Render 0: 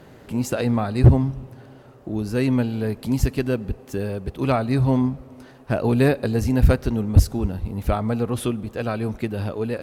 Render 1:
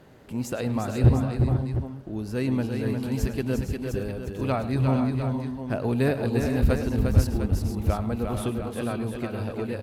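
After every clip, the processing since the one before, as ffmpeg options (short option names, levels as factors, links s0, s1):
-af "aecho=1:1:106|354|451|482|703:0.188|0.531|0.266|0.316|0.335,volume=0.501"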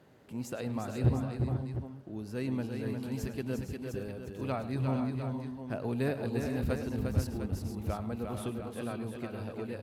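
-af "highpass=84,volume=0.398"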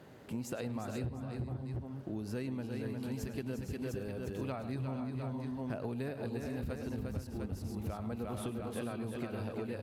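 -af "acompressor=threshold=0.01:ratio=16,volume=1.88"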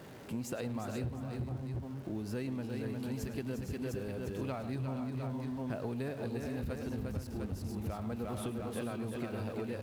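-af "aeval=exprs='val(0)+0.5*0.00282*sgn(val(0))':c=same"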